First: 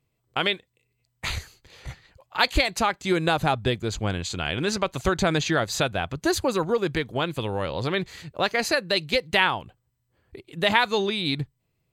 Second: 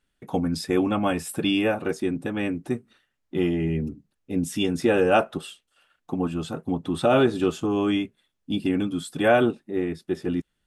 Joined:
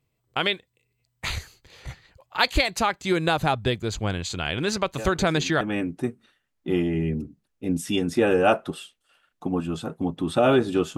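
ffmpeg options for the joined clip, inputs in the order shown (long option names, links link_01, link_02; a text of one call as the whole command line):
ffmpeg -i cue0.wav -i cue1.wav -filter_complex "[1:a]asplit=2[link_01][link_02];[0:a]apad=whole_dur=10.97,atrim=end=10.97,atrim=end=5.612[link_03];[link_02]atrim=start=2.278:end=7.64[link_04];[link_01]atrim=start=1.65:end=2.28,asetpts=PTS-STARTPTS,volume=-12dB,afade=type=in:duration=0.004:curve=hsin,afade=type=out:start_time=0.626:duration=0.004:curve=hsin,adelay=4980[link_05];[link_03][link_04]acrossfade=duration=0.004:curve1=hsin:curve2=hsin[link_06];[link_06][link_05]amix=inputs=2:normalize=0" out.wav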